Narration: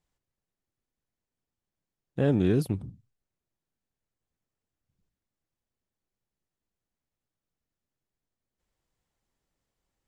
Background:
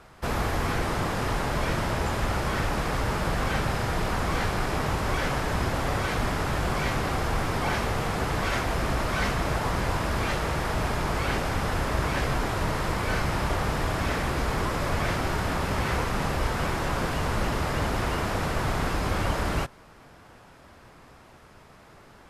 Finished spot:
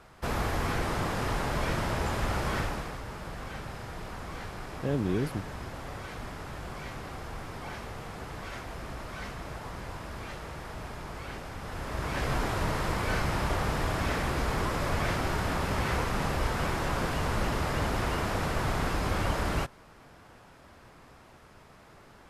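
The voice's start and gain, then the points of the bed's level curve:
2.65 s, -5.5 dB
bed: 2.58 s -3 dB
3.01 s -13 dB
11.58 s -13 dB
12.34 s -2.5 dB

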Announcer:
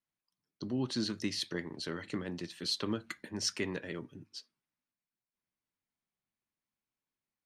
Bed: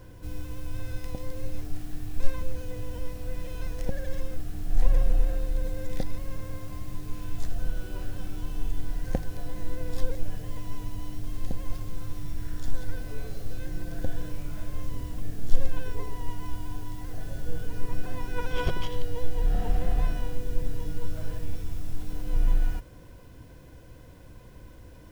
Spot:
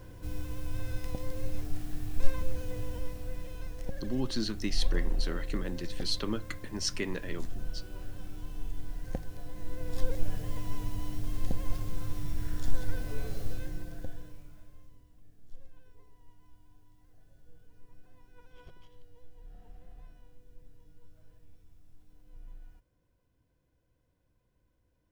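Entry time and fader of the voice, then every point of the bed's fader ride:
3.40 s, +1.0 dB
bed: 2.82 s -1 dB
3.73 s -7.5 dB
9.53 s -7.5 dB
10.22 s 0 dB
13.46 s 0 dB
15.06 s -26 dB

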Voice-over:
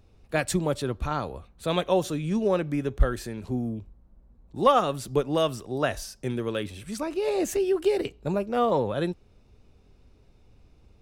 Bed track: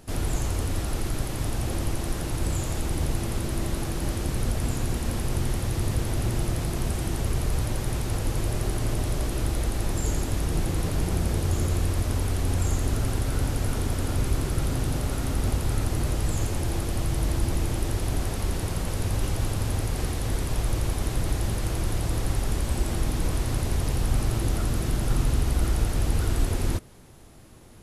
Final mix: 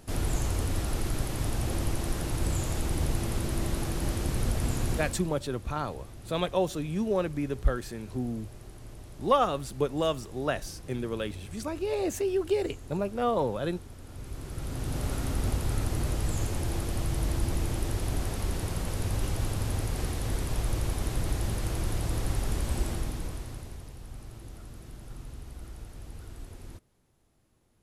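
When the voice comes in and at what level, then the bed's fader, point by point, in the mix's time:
4.65 s, -3.5 dB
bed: 4.94 s -2 dB
5.41 s -19.5 dB
14.02 s -19.5 dB
15.05 s -3.5 dB
22.83 s -3.5 dB
23.93 s -19.5 dB

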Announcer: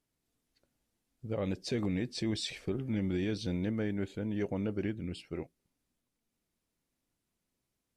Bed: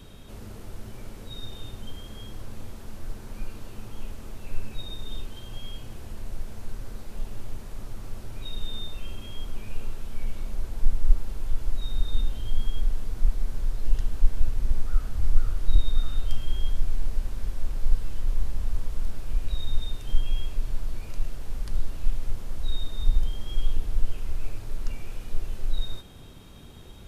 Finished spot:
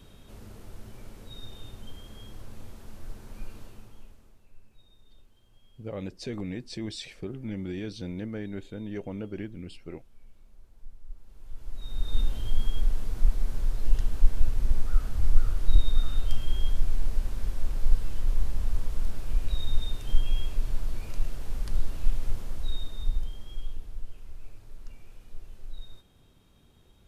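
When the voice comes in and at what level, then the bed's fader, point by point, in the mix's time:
4.55 s, -2.0 dB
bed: 3.61 s -5 dB
4.53 s -23.5 dB
11.1 s -23.5 dB
12.19 s 0 dB
22.35 s 0 dB
24.04 s -13.5 dB

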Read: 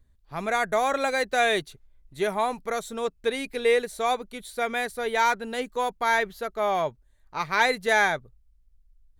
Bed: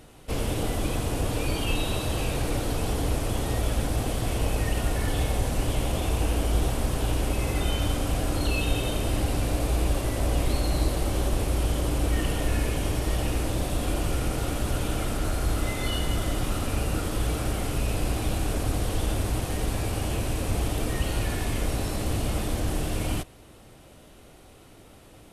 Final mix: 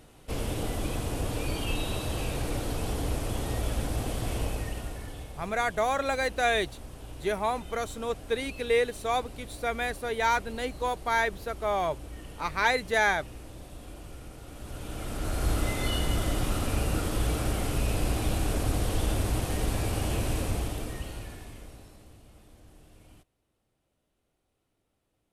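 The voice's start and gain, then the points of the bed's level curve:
5.05 s, -3.0 dB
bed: 4.39 s -4 dB
5.35 s -17.5 dB
14.44 s -17.5 dB
15.47 s -1 dB
20.38 s -1 dB
22.22 s -27 dB

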